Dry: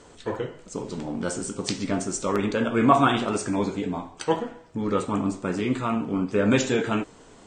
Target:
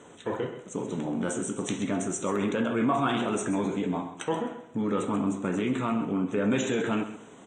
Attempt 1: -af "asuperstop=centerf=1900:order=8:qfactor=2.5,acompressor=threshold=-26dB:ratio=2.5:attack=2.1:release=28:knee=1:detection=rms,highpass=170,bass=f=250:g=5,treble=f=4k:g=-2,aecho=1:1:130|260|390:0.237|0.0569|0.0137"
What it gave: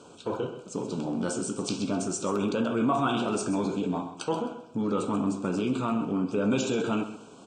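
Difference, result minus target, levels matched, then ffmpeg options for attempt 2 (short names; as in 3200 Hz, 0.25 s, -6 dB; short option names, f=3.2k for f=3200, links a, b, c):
2000 Hz band -3.0 dB
-af "asuperstop=centerf=4800:order=8:qfactor=2.5,acompressor=threshold=-26dB:ratio=2.5:attack=2.1:release=28:knee=1:detection=rms,highpass=170,bass=f=250:g=5,treble=f=4k:g=-2,aecho=1:1:130|260|390:0.237|0.0569|0.0137"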